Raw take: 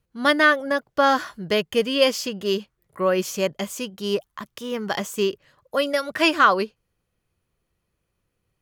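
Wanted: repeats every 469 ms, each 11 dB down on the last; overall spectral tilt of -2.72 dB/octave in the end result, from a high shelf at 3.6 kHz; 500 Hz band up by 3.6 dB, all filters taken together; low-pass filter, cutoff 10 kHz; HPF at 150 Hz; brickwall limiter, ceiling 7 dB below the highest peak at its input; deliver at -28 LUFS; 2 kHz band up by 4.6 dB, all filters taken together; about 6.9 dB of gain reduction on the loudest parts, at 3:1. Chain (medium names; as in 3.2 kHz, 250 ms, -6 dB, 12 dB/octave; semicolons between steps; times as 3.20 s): high-pass 150 Hz; low-pass 10 kHz; peaking EQ 500 Hz +4 dB; peaking EQ 2 kHz +4.5 dB; treble shelf 3.6 kHz +5.5 dB; compression 3:1, threshold -17 dBFS; peak limiter -12.5 dBFS; feedback delay 469 ms, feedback 28%, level -11 dB; trim -3 dB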